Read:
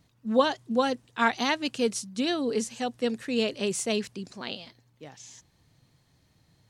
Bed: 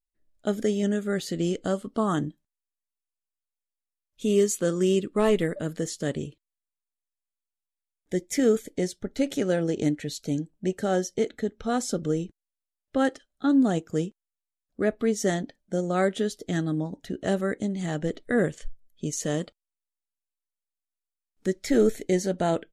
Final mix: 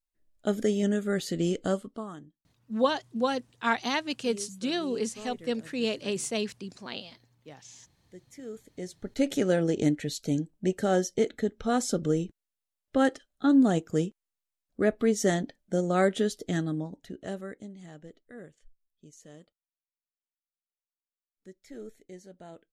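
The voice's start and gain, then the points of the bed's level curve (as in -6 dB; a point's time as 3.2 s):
2.45 s, -2.5 dB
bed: 1.74 s -1 dB
2.24 s -21.5 dB
8.42 s -21.5 dB
9.24 s 0 dB
16.41 s 0 dB
18.33 s -22.5 dB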